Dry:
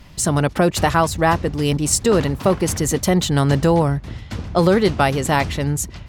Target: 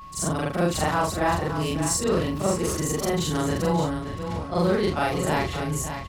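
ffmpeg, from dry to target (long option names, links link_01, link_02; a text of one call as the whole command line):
ffmpeg -i in.wav -filter_complex "[0:a]afftfilt=real='re':imag='-im':win_size=4096:overlap=0.75,asplit=2[link_01][link_02];[link_02]asoftclip=type=tanh:threshold=-23.5dB,volume=-9.5dB[link_03];[link_01][link_03]amix=inputs=2:normalize=0,aecho=1:1:571:0.355,aeval=exprs='val(0)+0.0158*sin(2*PI*1100*n/s)':channel_layout=same,volume=-4dB" out.wav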